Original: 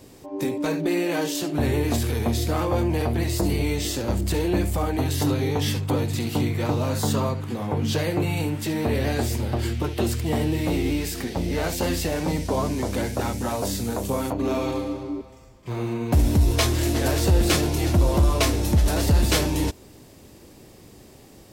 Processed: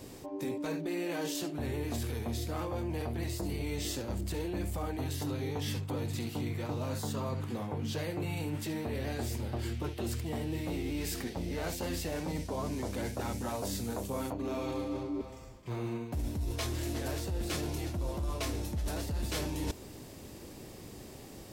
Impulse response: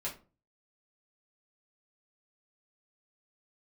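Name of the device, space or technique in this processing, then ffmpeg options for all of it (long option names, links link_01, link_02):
compression on the reversed sound: -af "areverse,acompressor=threshold=-33dB:ratio=6,areverse"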